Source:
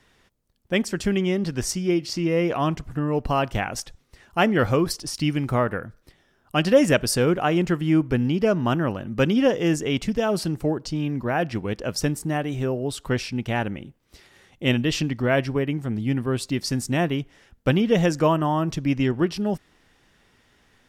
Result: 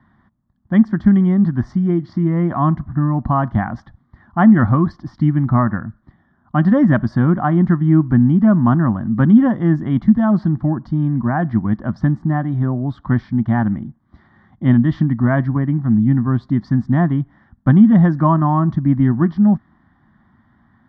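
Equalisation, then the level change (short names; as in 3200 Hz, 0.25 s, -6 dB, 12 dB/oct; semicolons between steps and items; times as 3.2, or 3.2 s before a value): speaker cabinet 120–3700 Hz, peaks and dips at 220 Hz +8 dB, 330 Hz +3 dB, 740 Hz +3 dB, 1100 Hz +7 dB, 1800 Hz +8 dB, 3300 Hz +4 dB; tilt -4 dB/oct; fixed phaser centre 1100 Hz, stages 4; +1.5 dB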